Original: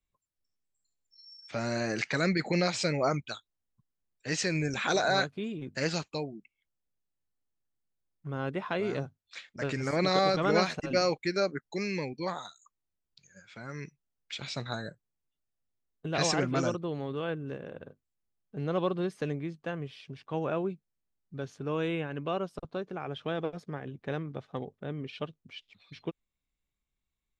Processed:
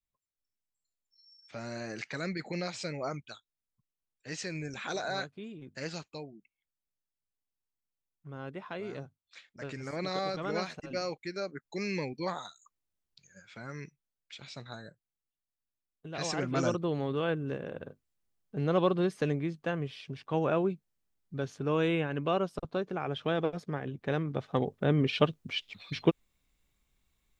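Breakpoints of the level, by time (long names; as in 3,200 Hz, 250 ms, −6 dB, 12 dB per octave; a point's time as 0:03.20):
0:11.46 −8 dB
0:11.90 −0.5 dB
0:13.65 −0.5 dB
0:14.34 −8.5 dB
0:16.16 −8.5 dB
0:16.80 +3 dB
0:24.12 +3 dB
0:24.97 +11.5 dB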